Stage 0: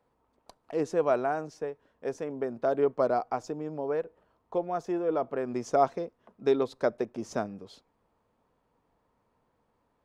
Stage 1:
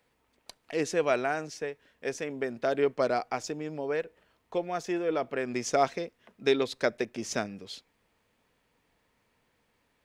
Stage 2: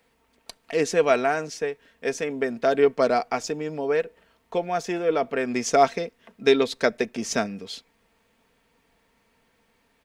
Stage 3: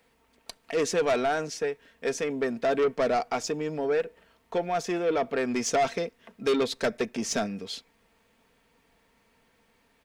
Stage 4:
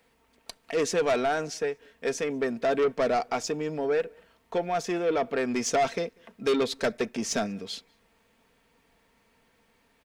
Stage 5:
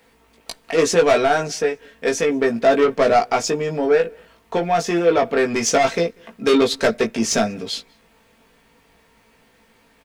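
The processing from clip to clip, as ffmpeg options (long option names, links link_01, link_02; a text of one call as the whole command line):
ffmpeg -i in.wav -af "highshelf=frequency=1500:width_type=q:width=1.5:gain=10" out.wav
ffmpeg -i in.wav -af "aecho=1:1:4.4:0.37,volume=5.5dB" out.wav
ffmpeg -i in.wav -af "asoftclip=type=tanh:threshold=-19.5dB" out.wav
ffmpeg -i in.wav -filter_complex "[0:a]asplit=2[link_01][link_02];[link_02]adelay=192.4,volume=-30dB,highshelf=frequency=4000:gain=-4.33[link_03];[link_01][link_03]amix=inputs=2:normalize=0" out.wav
ffmpeg -i in.wav -filter_complex "[0:a]asplit=2[link_01][link_02];[link_02]adelay=18,volume=-3.5dB[link_03];[link_01][link_03]amix=inputs=2:normalize=0,volume=8dB" out.wav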